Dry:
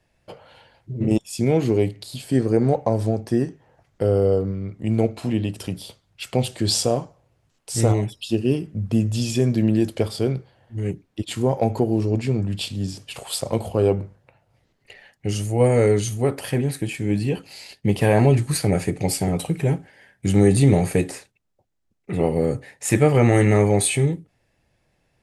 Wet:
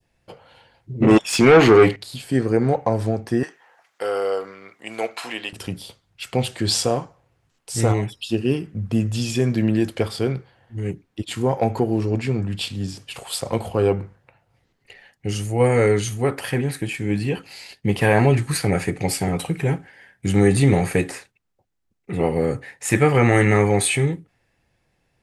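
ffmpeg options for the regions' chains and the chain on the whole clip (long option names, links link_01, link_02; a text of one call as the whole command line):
ffmpeg -i in.wav -filter_complex "[0:a]asettb=1/sr,asplit=3[link_01][link_02][link_03];[link_01]atrim=end=1.024[link_04];[link_02]atrim=start=1.02:end=1.96,asetpts=PTS-STARTPTS,afade=type=in:duration=0.004:curve=qsin,afade=type=out:start_time=0.936:duration=0.004:curve=qsin,acontrast=48,asplit=2[link_05][link_06];[link_06]highpass=frequency=720:poles=1,volume=20dB,asoftclip=type=tanh:threshold=-3.5dB[link_07];[link_05][link_07]amix=inputs=2:normalize=0,lowpass=frequency=2300:poles=1,volume=-6dB[link_08];[link_03]atrim=start=1.956[link_09];[link_04][link_08]acrossfade=duration=0.004:curve1=hsin:curve2=qsin[link_10];[link_10][link_09]acrossfade=duration=0.004:curve1=qsin:curve2=hsin,asettb=1/sr,asplit=3[link_11][link_12][link_13];[link_11]atrim=end=3.434[link_14];[link_12]atrim=start=3.43:end=5.53,asetpts=PTS-STARTPTS,afade=type=in:duration=0.004:curve=qsin,afade=type=out:start_time=2.096:duration=0.004:curve=qsin,highpass=860,acontrast=70[link_15];[link_13]atrim=start=5.526[link_16];[link_14][link_15]acrossfade=duration=0.004:curve1=hsin:curve2=qsin[link_17];[link_17][link_16]acrossfade=duration=0.004:curve1=qsin:curve2=hsin,adynamicequalizer=threshold=0.0126:dfrequency=1600:dqfactor=0.72:tfrequency=1600:tqfactor=0.72:attack=5:release=100:ratio=0.375:range=4:mode=boostabove:tftype=bell,bandreject=frequency=610:width=12,volume=-1dB" out.wav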